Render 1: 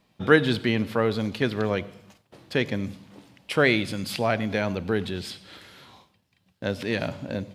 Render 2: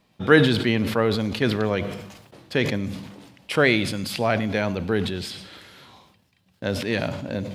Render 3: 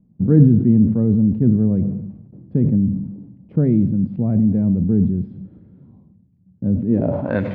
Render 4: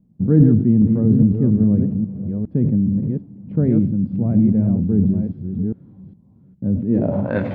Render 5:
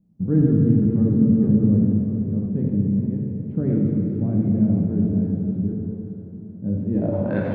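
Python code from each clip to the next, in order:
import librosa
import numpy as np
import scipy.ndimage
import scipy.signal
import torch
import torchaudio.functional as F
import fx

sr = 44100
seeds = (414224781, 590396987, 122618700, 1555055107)

y1 = fx.sustainer(x, sr, db_per_s=56.0)
y1 = y1 * librosa.db_to_amplitude(1.5)
y2 = fx.filter_sweep_lowpass(y1, sr, from_hz=200.0, to_hz=1800.0, start_s=6.87, end_s=7.4, q=1.8)
y2 = y2 * librosa.db_to_amplitude(7.5)
y3 = fx.reverse_delay(y2, sr, ms=409, wet_db=-5.0)
y3 = y3 * librosa.db_to_amplitude(-1.0)
y4 = fx.rev_plate(y3, sr, seeds[0], rt60_s=3.7, hf_ratio=0.75, predelay_ms=0, drr_db=-2.0)
y4 = y4 * librosa.db_to_amplitude(-6.5)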